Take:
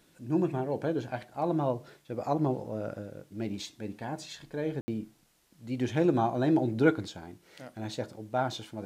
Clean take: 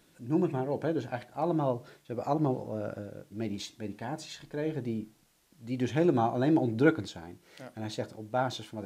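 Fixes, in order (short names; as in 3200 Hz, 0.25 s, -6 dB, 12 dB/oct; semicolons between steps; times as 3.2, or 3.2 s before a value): room tone fill 4.81–4.88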